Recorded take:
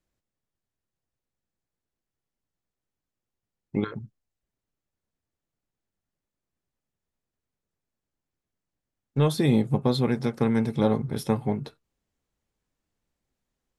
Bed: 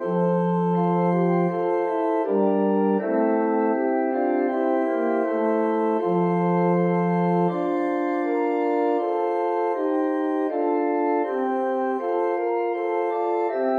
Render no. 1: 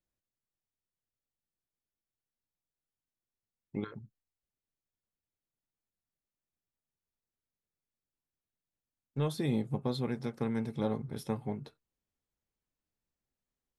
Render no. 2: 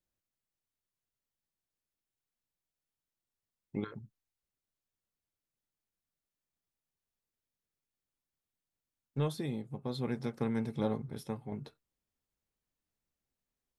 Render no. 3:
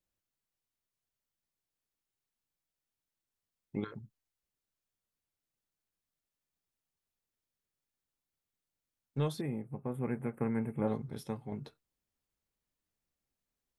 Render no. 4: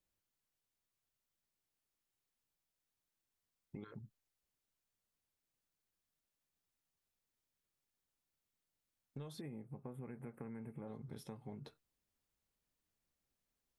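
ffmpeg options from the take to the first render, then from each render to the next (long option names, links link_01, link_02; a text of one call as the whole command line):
ffmpeg -i in.wav -af "volume=-10dB" out.wav
ffmpeg -i in.wav -filter_complex "[0:a]asplit=4[link_01][link_02][link_03][link_04];[link_01]atrim=end=9.56,asetpts=PTS-STARTPTS,afade=type=out:start_time=9.2:duration=0.36:silence=0.398107[link_05];[link_02]atrim=start=9.56:end=9.77,asetpts=PTS-STARTPTS,volume=-8dB[link_06];[link_03]atrim=start=9.77:end=11.52,asetpts=PTS-STARTPTS,afade=type=in:duration=0.36:silence=0.398107,afade=type=out:start_time=1.07:duration=0.68:silence=0.446684[link_07];[link_04]atrim=start=11.52,asetpts=PTS-STARTPTS,afade=type=in:duration=0.004:curve=hsin:silence=0.446684[link_08];[link_05][link_06][link_07][link_08]concat=n=4:v=0:a=1" out.wav
ffmpeg -i in.wav -filter_complex "[0:a]asettb=1/sr,asplit=3[link_01][link_02][link_03];[link_01]atrim=end=9.414[link_04];[link_02]atrim=start=9.41:end=10.88,asetpts=PTS-STARTPTS,afade=type=in:duration=0.004:curve=qsin,afade=type=out:start_time=1.466:duration=0.004:curve=qsin,asuperstop=centerf=4800:order=8:qfactor=0.79[link_05];[link_03]atrim=start=10.876[link_06];[link_04][link_05]acrossfade=duration=0.004:curve1=hsin:curve2=qsin[link_07];[link_07][link_06]acrossfade=duration=0.004:curve1=qsin:curve2=hsin" out.wav
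ffmpeg -i in.wav -af "alimiter=level_in=7.5dB:limit=-24dB:level=0:latency=1:release=151,volume=-7.5dB,acompressor=threshold=-47dB:ratio=3" out.wav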